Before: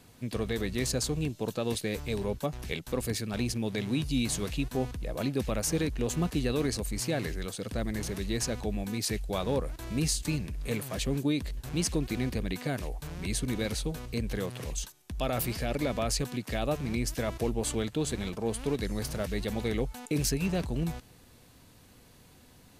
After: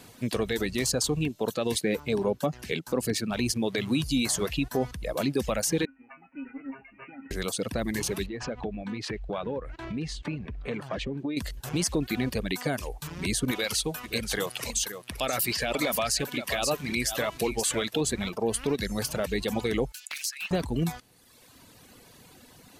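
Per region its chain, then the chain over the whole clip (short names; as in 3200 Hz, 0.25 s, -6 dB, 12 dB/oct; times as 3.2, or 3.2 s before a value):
1.79–3.31 HPF 140 Hz + tilt -1.5 dB/oct
5.85–7.31 resonator 270 Hz, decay 0.27 s, harmonics odd, mix 100% + tube stage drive 33 dB, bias 0.35 + careless resampling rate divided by 8×, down none, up filtered
8.26–11.37 LPF 2500 Hz + compressor, threshold -33 dBFS
13.51–18.01 tilt shelf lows -5 dB, about 780 Hz + echo 0.525 s -10 dB
19.92–20.51 inverse Chebyshev high-pass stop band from 370 Hz, stop band 70 dB + compressor 2.5:1, threshold -38 dBFS + Doppler distortion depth 0.59 ms
whole clip: reverb removal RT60 1.2 s; low shelf 110 Hz -11 dB; limiter -25 dBFS; gain +8.5 dB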